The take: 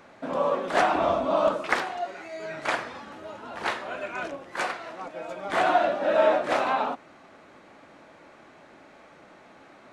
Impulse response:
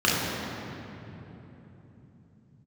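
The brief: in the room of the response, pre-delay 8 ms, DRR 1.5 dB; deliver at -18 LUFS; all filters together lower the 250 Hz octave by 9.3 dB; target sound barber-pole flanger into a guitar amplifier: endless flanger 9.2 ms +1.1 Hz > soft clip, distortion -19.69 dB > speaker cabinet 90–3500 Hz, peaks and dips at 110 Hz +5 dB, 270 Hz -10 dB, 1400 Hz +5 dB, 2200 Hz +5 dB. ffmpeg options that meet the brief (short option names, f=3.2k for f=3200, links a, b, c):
-filter_complex "[0:a]equalizer=f=250:t=o:g=-7.5,asplit=2[a][b];[1:a]atrim=start_sample=2205,adelay=8[c];[b][c]afir=irnorm=-1:irlink=0,volume=-19.5dB[d];[a][d]amix=inputs=2:normalize=0,asplit=2[e][f];[f]adelay=9.2,afreqshift=1.1[g];[e][g]amix=inputs=2:normalize=1,asoftclip=threshold=-15.5dB,highpass=90,equalizer=f=110:t=q:w=4:g=5,equalizer=f=270:t=q:w=4:g=-10,equalizer=f=1.4k:t=q:w=4:g=5,equalizer=f=2.2k:t=q:w=4:g=5,lowpass=f=3.5k:w=0.5412,lowpass=f=3.5k:w=1.3066,volume=10dB"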